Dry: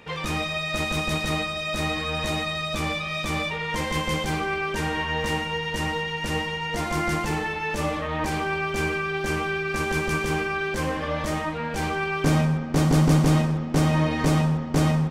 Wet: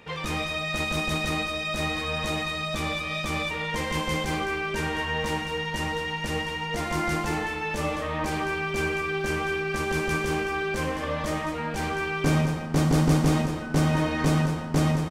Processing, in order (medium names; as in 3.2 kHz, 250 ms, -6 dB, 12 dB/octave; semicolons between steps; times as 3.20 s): 13.61–14.50 s: whistle 1.5 kHz -37 dBFS; delay 209 ms -9.5 dB; trim -2 dB